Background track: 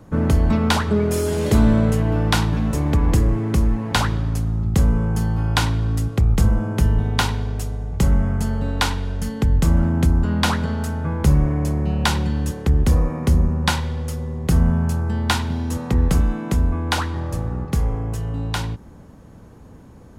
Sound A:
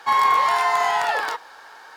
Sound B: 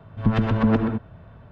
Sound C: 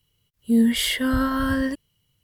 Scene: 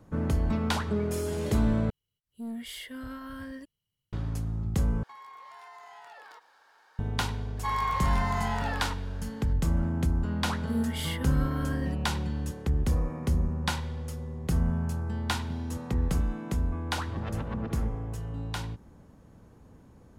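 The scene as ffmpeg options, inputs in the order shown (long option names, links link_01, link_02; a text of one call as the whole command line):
ffmpeg -i bed.wav -i cue0.wav -i cue1.wav -i cue2.wav -filter_complex "[3:a]asplit=2[link_01][link_02];[1:a]asplit=2[link_03][link_04];[0:a]volume=-10dB[link_05];[link_01]asoftclip=type=tanh:threshold=-15.5dB[link_06];[link_03]acompressor=threshold=-29dB:ratio=6:attack=3.2:release=140:knee=1:detection=peak[link_07];[2:a]acompressor=threshold=-24dB:ratio=6:attack=3.2:release=140:knee=1:detection=peak[link_08];[link_05]asplit=3[link_09][link_10][link_11];[link_09]atrim=end=1.904[link_12];[link_06]atrim=end=2.23,asetpts=PTS-STARTPTS,volume=-16.5dB[link_13];[link_10]atrim=start=4.126:end=5.034[link_14];[link_07]atrim=end=1.96,asetpts=PTS-STARTPTS,volume=-17dB[link_15];[link_11]atrim=start=6.986[link_16];[link_04]atrim=end=1.96,asetpts=PTS-STARTPTS,volume=-12dB,afade=type=in:duration=0.004:curve=hsin,afade=type=out:start_time=1.956:duration=0.004:curve=hsin,adelay=7570[link_17];[link_02]atrim=end=2.23,asetpts=PTS-STARTPTS,volume=-12.5dB,afade=type=in:duration=0.004:curve=hsin,afade=type=out:start_time=2.226:duration=0.004:curve=hsin,adelay=10200[link_18];[link_08]atrim=end=1.51,asetpts=PTS-STARTPTS,volume=-8.5dB,afade=type=in:duration=0.004:curve=hsin,afade=type=out:start_time=1.506:duration=0.004:curve=hsin,adelay=16910[link_19];[link_12][link_13]acrossfade=duration=0.004:curve1=hsin:curve2=hsin[link_20];[link_20][link_14]acrossfade=duration=0.004:curve1=hsin:curve2=hsin[link_21];[link_21][link_15]acrossfade=duration=0.004:curve1=hsin:curve2=hsin[link_22];[link_22][link_16]acrossfade=duration=0.004:curve1=hsin:curve2=hsin[link_23];[link_23][link_17][link_18][link_19]amix=inputs=4:normalize=0" out.wav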